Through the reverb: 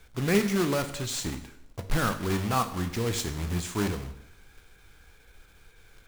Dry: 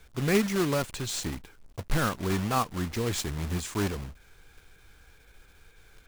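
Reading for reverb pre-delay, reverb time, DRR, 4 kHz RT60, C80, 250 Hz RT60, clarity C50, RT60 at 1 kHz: 7 ms, 0.80 s, 8.0 dB, 0.70 s, 14.0 dB, 0.80 s, 11.5 dB, 0.80 s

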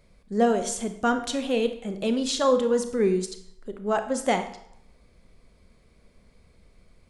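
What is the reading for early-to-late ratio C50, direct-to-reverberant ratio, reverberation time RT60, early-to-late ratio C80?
10.0 dB, 7.5 dB, 0.75 s, 13.0 dB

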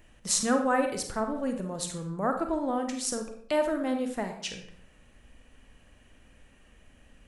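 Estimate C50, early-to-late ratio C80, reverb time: 7.0 dB, 10.5 dB, 0.65 s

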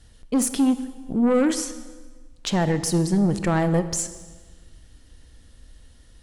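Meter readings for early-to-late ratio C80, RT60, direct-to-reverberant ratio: 14.0 dB, 1.4 s, 11.5 dB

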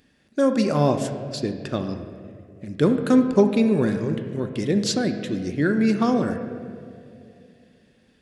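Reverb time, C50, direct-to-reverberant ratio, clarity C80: 2.6 s, 8.0 dB, 6.0 dB, 9.0 dB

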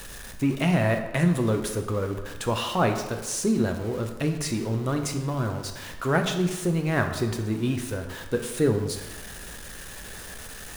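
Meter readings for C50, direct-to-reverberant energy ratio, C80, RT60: 7.5 dB, 4.5 dB, 9.5 dB, 1.2 s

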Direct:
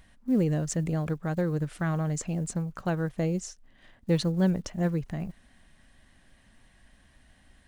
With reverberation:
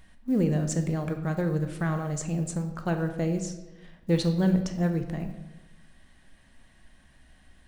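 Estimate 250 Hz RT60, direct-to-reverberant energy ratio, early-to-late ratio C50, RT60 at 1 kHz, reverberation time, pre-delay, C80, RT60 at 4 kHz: 1.3 s, 5.5 dB, 9.0 dB, 1.0 s, 1.1 s, 3 ms, 11.0 dB, 0.85 s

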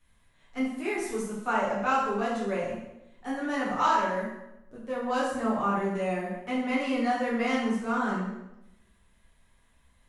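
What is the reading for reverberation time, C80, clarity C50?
0.90 s, 4.5 dB, 2.0 dB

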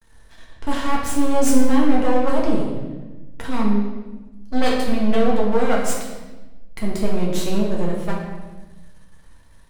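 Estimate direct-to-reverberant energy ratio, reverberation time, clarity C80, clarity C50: -3.5 dB, 1.2 s, 4.5 dB, 2.0 dB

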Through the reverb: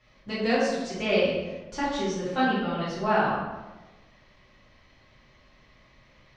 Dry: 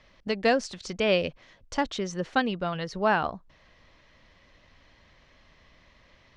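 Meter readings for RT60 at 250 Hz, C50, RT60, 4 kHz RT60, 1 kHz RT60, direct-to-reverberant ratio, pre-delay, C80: 1.3 s, -0.5 dB, 1.2 s, 0.75 s, 1.1 s, -10.0 dB, 4 ms, 2.5 dB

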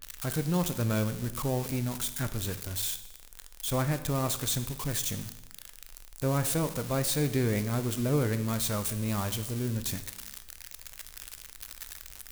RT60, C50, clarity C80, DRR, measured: 1.0 s, 12.5 dB, 14.5 dB, 10.0 dB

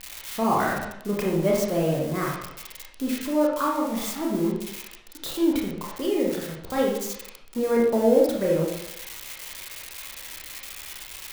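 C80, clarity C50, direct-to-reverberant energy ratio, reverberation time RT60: 5.0 dB, 1.5 dB, -3.0 dB, 0.80 s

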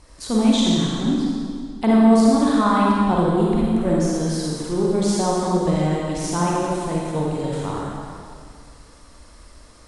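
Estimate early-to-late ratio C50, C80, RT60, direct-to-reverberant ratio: -3.0 dB, -0.5 dB, 2.1 s, -4.5 dB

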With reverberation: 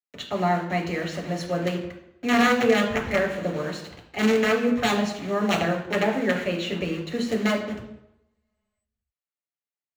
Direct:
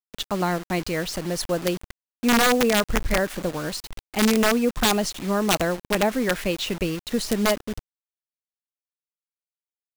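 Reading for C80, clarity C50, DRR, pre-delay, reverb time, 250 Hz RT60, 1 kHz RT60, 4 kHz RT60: 10.0 dB, 7.5 dB, 0.0 dB, 6 ms, 0.85 s, 0.75 s, 0.85 s, 0.65 s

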